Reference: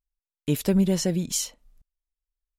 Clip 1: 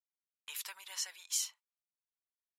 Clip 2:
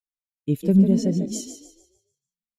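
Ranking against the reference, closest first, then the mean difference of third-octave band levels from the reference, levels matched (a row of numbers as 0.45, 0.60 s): 2, 1; 10.0, 14.0 dB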